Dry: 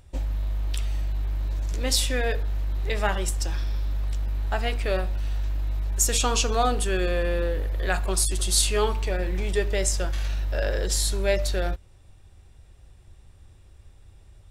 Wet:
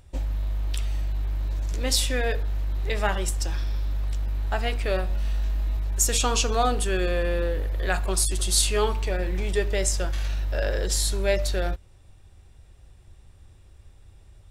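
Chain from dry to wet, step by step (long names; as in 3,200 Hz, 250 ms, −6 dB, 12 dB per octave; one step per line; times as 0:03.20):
0:05.07–0:05.77: double-tracking delay 25 ms −4 dB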